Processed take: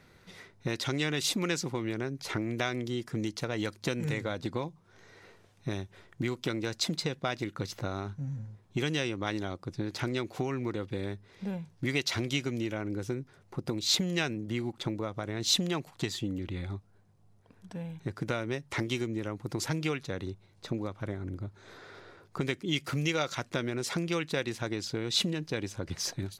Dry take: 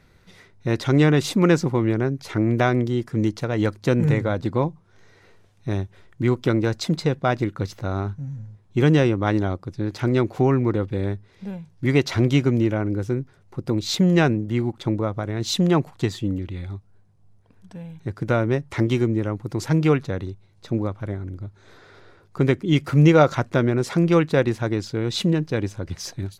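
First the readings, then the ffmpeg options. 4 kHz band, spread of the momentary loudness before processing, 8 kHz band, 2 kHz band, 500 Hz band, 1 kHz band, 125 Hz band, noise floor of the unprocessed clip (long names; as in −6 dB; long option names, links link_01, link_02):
−0.5 dB, 14 LU, 0.0 dB, −6.5 dB, −12.5 dB, −11.0 dB, −14.0 dB, −55 dBFS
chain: -filter_complex "[0:a]lowshelf=frequency=85:gain=-11.5,acrossover=split=2300[link_01][link_02];[link_01]acompressor=threshold=-30dB:ratio=6[link_03];[link_03][link_02]amix=inputs=2:normalize=0"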